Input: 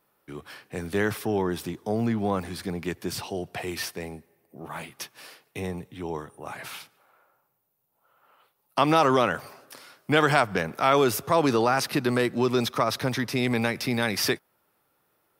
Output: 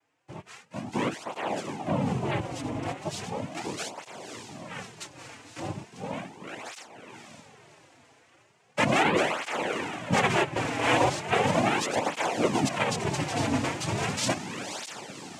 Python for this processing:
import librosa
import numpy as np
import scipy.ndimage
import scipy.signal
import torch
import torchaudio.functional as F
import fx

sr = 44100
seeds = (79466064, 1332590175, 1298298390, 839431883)

y = fx.echo_diffused(x, sr, ms=553, feedback_pct=45, wet_db=-7.0)
y = fx.noise_vocoder(y, sr, seeds[0], bands=4)
y = fx.flanger_cancel(y, sr, hz=0.37, depth_ms=5.6)